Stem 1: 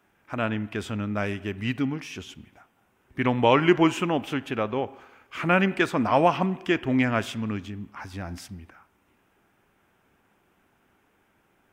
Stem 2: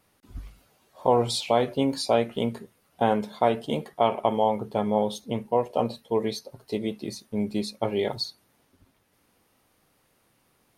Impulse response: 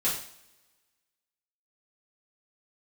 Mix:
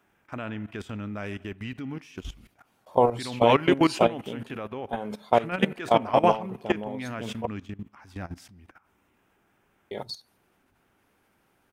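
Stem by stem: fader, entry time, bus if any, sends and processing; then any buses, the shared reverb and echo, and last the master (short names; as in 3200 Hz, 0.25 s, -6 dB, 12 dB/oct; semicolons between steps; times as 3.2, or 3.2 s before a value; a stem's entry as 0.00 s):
+1.0 dB, 0.00 s, no send, dry
+3.0 dB, 1.90 s, muted 7.47–9.91, no send, gate -55 dBFS, range -8 dB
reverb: off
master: level quantiser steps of 17 dB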